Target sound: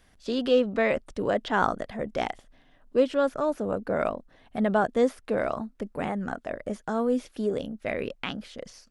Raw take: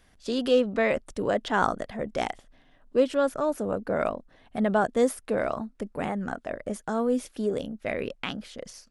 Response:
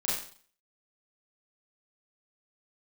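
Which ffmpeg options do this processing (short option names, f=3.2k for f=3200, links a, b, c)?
-filter_complex "[0:a]acrossover=split=5600[a][b];[b]acompressor=threshold=-56dB:ratio=4:attack=1:release=60[c];[a][c]amix=inputs=2:normalize=0"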